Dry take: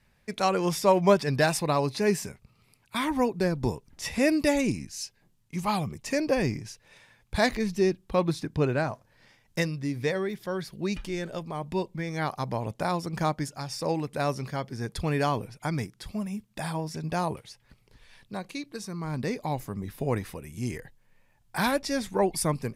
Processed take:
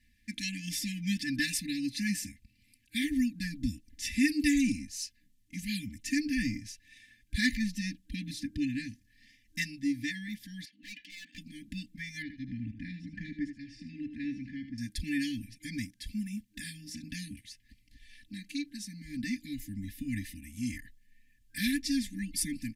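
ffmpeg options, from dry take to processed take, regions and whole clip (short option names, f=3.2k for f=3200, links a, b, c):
-filter_complex "[0:a]asettb=1/sr,asplit=3[a][b][c];[a]atrim=end=10.654[d];[b]atrim=start=10.65:end=11.38,asetpts=PTS-STARTPTS,afade=t=in:d=0.004:c=qsin,afade=t=out:st=0.726:d=0.004:c=qsin,highpass=570,lowpass=3.2k,aeval=exprs='0.0178*(abs(mod(val(0)/0.0178+3,4)-2)-1)':c=same[e];[c]atrim=start=11.376[f];[d][e]acrossfade=d=0.004:c1=hsin:c2=qsin[g];[g][f]acrossfade=d=0.004:c1=qsin:c2=hsin,asettb=1/sr,asplit=3[h][i][j];[h]atrim=end=12.224[k];[i]atrim=start=12.22:end=14.78,asetpts=PTS-STARTPTS,afade=t=in:d=0.004:c=qsin,afade=t=out:st=2.556:d=0.004:c=qsin,lowpass=1.9k,aecho=1:1:77:0.316,atrim=end_sample=112896[l];[j]atrim=start=14.776[m];[k][l]acrossfade=d=0.004:c1=hsin:c2=qsin[n];[n][m]acrossfade=d=0.004:c1=qsin:c2=hsin,afftfilt=real='re*(1-between(b*sr/4096,310,1600))':imag='im*(1-between(b*sr/4096,310,1600))':win_size=4096:overlap=0.75,aecho=1:1:3.4:0.92,volume=-4dB"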